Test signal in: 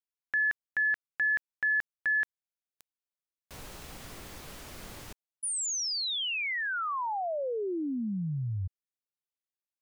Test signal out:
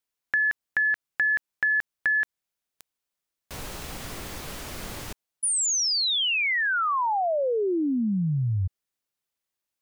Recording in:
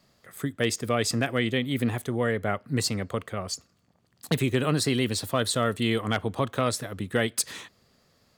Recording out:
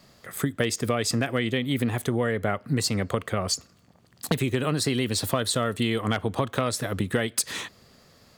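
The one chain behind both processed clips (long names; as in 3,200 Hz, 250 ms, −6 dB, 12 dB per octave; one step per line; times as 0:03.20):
downward compressor, threshold −30 dBFS
level +8.5 dB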